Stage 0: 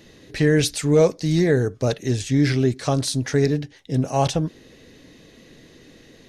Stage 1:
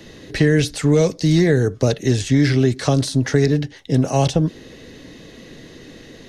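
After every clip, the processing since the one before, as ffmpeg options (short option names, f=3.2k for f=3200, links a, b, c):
-filter_complex "[0:a]highshelf=f=8.6k:g=-5.5,bandreject=f=2.4k:w=18,acrossover=split=200|630|1900[a][b][c][d];[a]acompressor=threshold=-26dB:ratio=4[e];[b]acompressor=threshold=-25dB:ratio=4[f];[c]acompressor=threshold=-39dB:ratio=4[g];[d]acompressor=threshold=-35dB:ratio=4[h];[e][f][g][h]amix=inputs=4:normalize=0,volume=8dB"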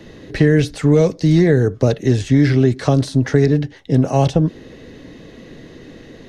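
-af "highshelf=f=2.9k:g=-10,volume=2.5dB"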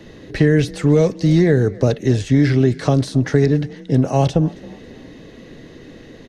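-filter_complex "[0:a]asplit=4[a][b][c][d];[b]adelay=271,afreqshift=33,volume=-22.5dB[e];[c]adelay=542,afreqshift=66,volume=-30.5dB[f];[d]adelay=813,afreqshift=99,volume=-38.4dB[g];[a][e][f][g]amix=inputs=4:normalize=0,volume=-1dB"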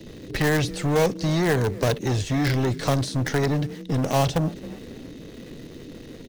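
-filter_complex "[0:a]acrossover=split=630|2600[a][b][c];[a]asoftclip=type=tanh:threshold=-20dB[d];[b]acrusher=bits=5:dc=4:mix=0:aa=0.000001[e];[d][e][c]amix=inputs=3:normalize=0"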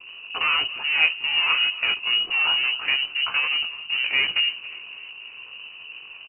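-af "flanger=delay=16.5:depth=2.3:speed=2.4,aecho=1:1:281|562|843|1124:0.0794|0.0453|0.0258|0.0147,lowpass=f=2.6k:t=q:w=0.5098,lowpass=f=2.6k:t=q:w=0.6013,lowpass=f=2.6k:t=q:w=0.9,lowpass=f=2.6k:t=q:w=2.563,afreqshift=-3000,volume=2.5dB"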